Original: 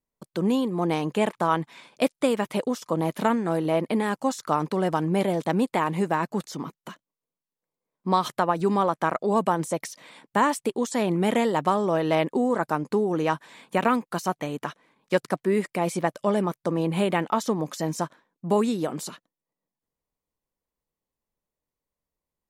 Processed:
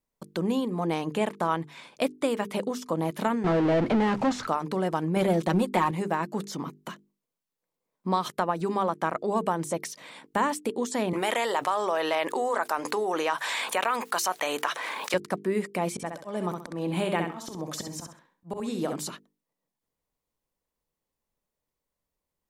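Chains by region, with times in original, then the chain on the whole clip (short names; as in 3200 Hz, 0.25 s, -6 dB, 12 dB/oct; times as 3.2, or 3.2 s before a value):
3.44–4.47 power-law curve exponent 0.35 + tape spacing loss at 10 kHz 24 dB
5.16–5.91 comb 5.5 ms, depth 66% + sample leveller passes 1
11.13–15.14 HPF 710 Hz + fast leveller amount 70%
15.93–18.96 auto swell 0.278 s + feedback echo 65 ms, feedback 25%, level -6 dB
whole clip: compressor 1.5:1, threshold -35 dBFS; notches 50/100/150/200/250/300/350/400/450 Hz; gain +2.5 dB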